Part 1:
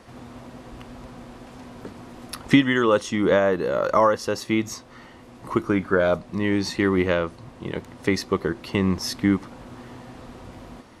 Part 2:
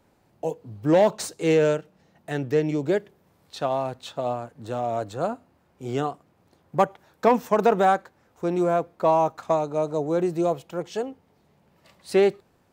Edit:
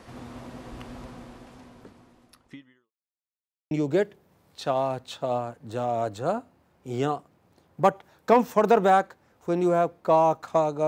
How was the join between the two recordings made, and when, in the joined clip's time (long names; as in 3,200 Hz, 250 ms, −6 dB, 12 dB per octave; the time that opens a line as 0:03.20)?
part 1
0:00.97–0:02.92: fade out quadratic
0:02.92–0:03.71: silence
0:03.71: continue with part 2 from 0:02.66